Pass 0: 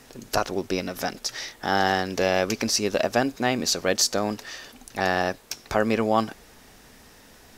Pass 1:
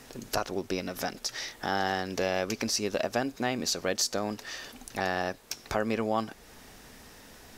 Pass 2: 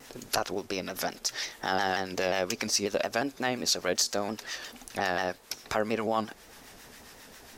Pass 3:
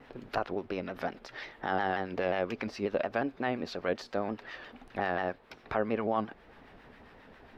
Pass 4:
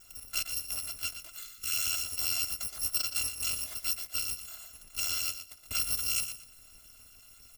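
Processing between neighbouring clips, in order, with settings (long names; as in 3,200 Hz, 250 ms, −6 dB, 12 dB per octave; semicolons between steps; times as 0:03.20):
downward compressor 1.5 to 1, threshold −36 dBFS, peak gain reduction 7.5 dB
low-shelf EQ 270 Hz −6 dB; two-band tremolo in antiphase 7.4 Hz, depth 50%, crossover 920 Hz; pitch modulation by a square or saw wave saw down 5.6 Hz, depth 100 cents; level +4 dB
high-frequency loss of the air 460 metres
samples in bit-reversed order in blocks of 256 samples; gain on a spectral selection 0:01.37–0:01.77, 490–1,100 Hz −25 dB; repeating echo 119 ms, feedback 23%, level −10 dB; level −1 dB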